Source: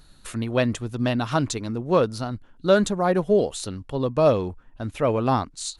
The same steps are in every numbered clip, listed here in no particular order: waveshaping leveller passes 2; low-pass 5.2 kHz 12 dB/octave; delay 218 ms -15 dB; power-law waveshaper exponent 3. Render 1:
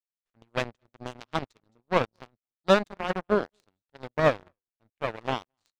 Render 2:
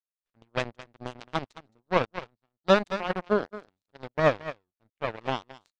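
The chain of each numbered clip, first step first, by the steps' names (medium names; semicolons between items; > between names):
delay > power-law waveshaper > low-pass > waveshaping leveller; power-law waveshaper > delay > waveshaping leveller > low-pass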